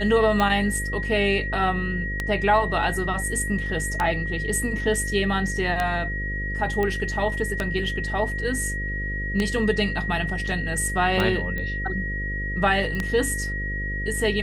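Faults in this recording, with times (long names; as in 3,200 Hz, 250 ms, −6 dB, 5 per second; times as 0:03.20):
mains buzz 50 Hz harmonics 11 −30 dBFS
scratch tick 33 1/3 rpm −10 dBFS
whistle 1,900 Hz −29 dBFS
0:06.83: click −14 dBFS
0:11.58: click −18 dBFS
0:12.95: click −19 dBFS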